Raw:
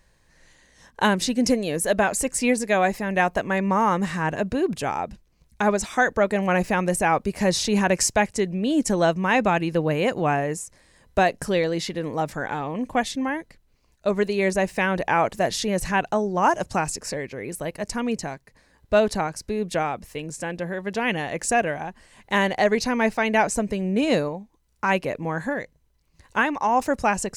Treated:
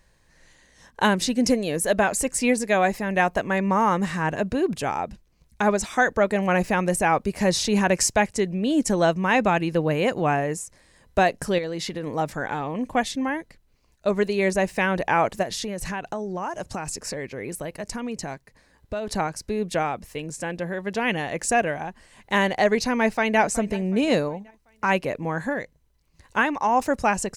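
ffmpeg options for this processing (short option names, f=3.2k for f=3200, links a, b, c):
-filter_complex "[0:a]asettb=1/sr,asplit=3[a][b][c];[a]atrim=end=11.584[d];[b]atrim=start=11.58:end=12.07,asetpts=PTS-STARTPTS,afade=t=in:d=0.004:c=qsin,afade=t=out:st=0.486:d=0.004:c=qsin,acompressor=threshold=-25dB:ratio=6:attack=3.2:release=140:knee=1:detection=peak[e];[c]atrim=start=12.066[f];[d][e]acrossfade=d=0.004:c1=hsin:c2=qsin[g];[g][f]acrossfade=d=0.004:c1=qsin:c2=hsin,asplit=3[h][i][j];[h]afade=t=out:st=15.42:d=0.02[k];[i]acompressor=threshold=-26dB:ratio=6:attack=3.2:release=140:knee=1:detection=peak,afade=t=in:st=15.42:d=0.02,afade=t=out:st=19.07:d=0.02[l];[j]afade=t=in:st=19.07:d=0.02[m];[k][l][m]amix=inputs=3:normalize=0,asplit=2[n][o];[o]afade=t=in:st=22.99:d=0.01,afade=t=out:st=23.39:d=0.01,aecho=0:1:370|740|1110|1480:0.141254|0.0635642|0.0286039|0.0128717[p];[n][p]amix=inputs=2:normalize=0"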